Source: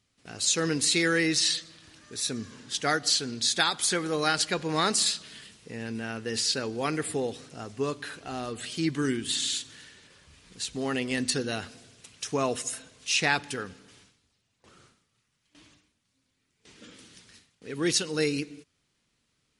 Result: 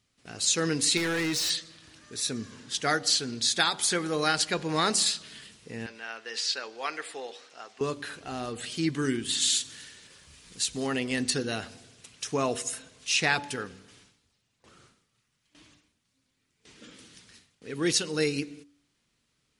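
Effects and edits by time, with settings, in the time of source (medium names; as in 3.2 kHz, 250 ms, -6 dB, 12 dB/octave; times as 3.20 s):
0.97–1.50 s: hard clipper -26 dBFS
5.86–7.81 s: band-pass 740–5600 Hz
9.41–10.87 s: treble shelf 4.4 kHz +8.5 dB
whole clip: de-hum 95.71 Hz, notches 10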